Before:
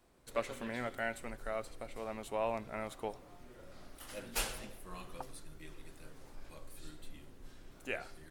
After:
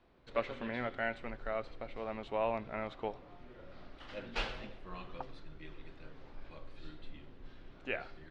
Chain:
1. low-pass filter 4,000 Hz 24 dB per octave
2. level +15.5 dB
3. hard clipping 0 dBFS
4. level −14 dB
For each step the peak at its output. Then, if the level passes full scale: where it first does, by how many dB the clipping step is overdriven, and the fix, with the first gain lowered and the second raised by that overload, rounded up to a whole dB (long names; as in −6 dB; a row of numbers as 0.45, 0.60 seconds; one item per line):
−19.0, −3.5, −3.5, −17.5 dBFS
no step passes full scale